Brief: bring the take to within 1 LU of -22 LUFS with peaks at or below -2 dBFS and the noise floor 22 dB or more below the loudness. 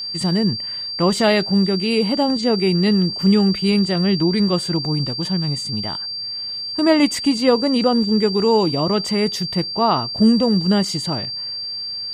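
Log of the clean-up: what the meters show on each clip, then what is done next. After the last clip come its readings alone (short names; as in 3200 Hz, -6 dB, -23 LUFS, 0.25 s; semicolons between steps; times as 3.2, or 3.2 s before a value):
ticks 39/s; steady tone 4700 Hz; tone level -25 dBFS; loudness -18.5 LUFS; peak -2.5 dBFS; loudness target -22.0 LUFS
-> de-click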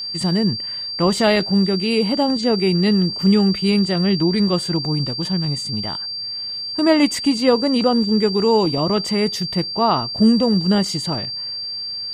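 ticks 0.16/s; steady tone 4700 Hz; tone level -25 dBFS
-> notch 4700 Hz, Q 30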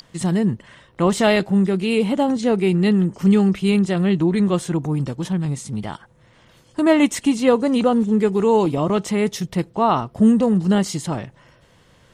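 steady tone none; loudness -19.0 LUFS; peak -3.0 dBFS; loudness target -22.0 LUFS
-> gain -3 dB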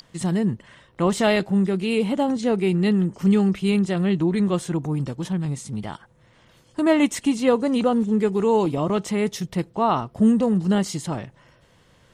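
loudness -22.0 LUFS; peak -6.0 dBFS; noise floor -57 dBFS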